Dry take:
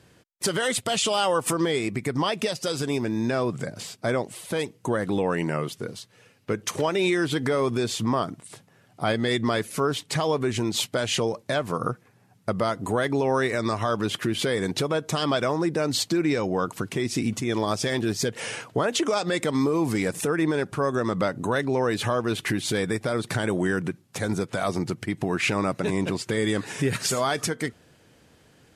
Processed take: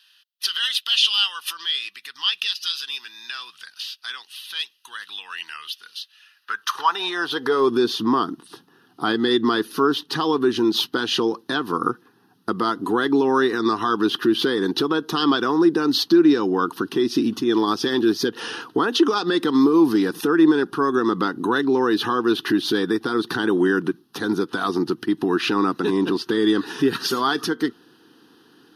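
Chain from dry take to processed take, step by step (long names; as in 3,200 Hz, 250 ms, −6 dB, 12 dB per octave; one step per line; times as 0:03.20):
dynamic equaliser 9,500 Hz, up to −6 dB, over −49 dBFS, Q 2
phaser with its sweep stopped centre 2,200 Hz, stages 6
high-pass filter sweep 2,600 Hz → 320 Hz, 0:06.11–0:07.75
level +6.5 dB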